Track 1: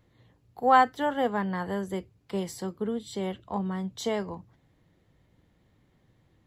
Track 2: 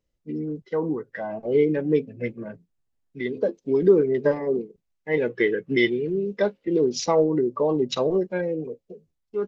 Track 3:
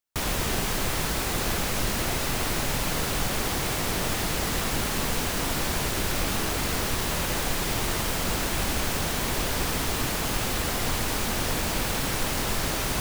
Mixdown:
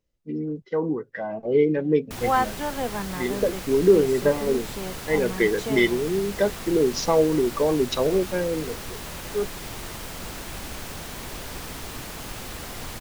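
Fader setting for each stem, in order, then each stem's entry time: −2.5, +0.5, −8.5 decibels; 1.60, 0.00, 1.95 seconds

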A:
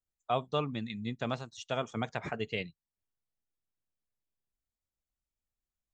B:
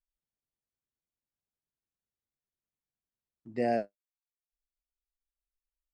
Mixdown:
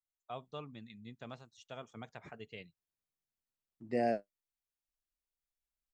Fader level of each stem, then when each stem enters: −13.5, −3.0 decibels; 0.00, 0.35 seconds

